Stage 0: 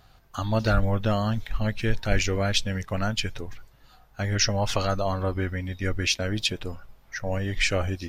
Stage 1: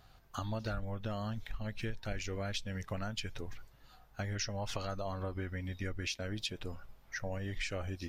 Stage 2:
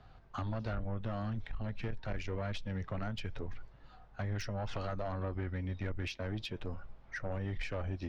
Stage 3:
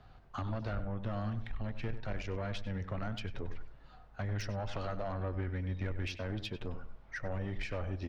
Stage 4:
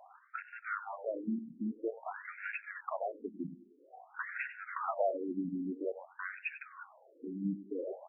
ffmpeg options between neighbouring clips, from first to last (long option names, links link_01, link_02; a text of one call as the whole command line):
ffmpeg -i in.wav -af "acompressor=threshold=-30dB:ratio=5,volume=-5dB" out.wav
ffmpeg -i in.wav -filter_complex "[0:a]equalizer=frequency=7200:width_type=o:width=2.8:gain=-11,acrossover=split=110|440|6500[link_01][link_02][link_03][link_04];[link_04]acrusher=bits=7:mix=0:aa=0.000001[link_05];[link_01][link_02][link_03][link_05]amix=inputs=4:normalize=0,asoftclip=type=tanh:threshold=-35dB,volume=4.5dB" out.wav
ffmpeg -i in.wav -filter_complex "[0:a]asplit=2[link_01][link_02];[link_02]adelay=97,lowpass=frequency=2600:poles=1,volume=-11dB,asplit=2[link_03][link_04];[link_04]adelay=97,lowpass=frequency=2600:poles=1,volume=0.28,asplit=2[link_05][link_06];[link_06]adelay=97,lowpass=frequency=2600:poles=1,volume=0.28[link_07];[link_01][link_03][link_05][link_07]amix=inputs=4:normalize=0" out.wav
ffmpeg -i in.wav -af "afftfilt=real='re*between(b*sr/1024,240*pow(2000/240,0.5+0.5*sin(2*PI*0.5*pts/sr))/1.41,240*pow(2000/240,0.5+0.5*sin(2*PI*0.5*pts/sr))*1.41)':imag='im*between(b*sr/1024,240*pow(2000/240,0.5+0.5*sin(2*PI*0.5*pts/sr))/1.41,240*pow(2000/240,0.5+0.5*sin(2*PI*0.5*pts/sr))*1.41)':win_size=1024:overlap=0.75,volume=9.5dB" out.wav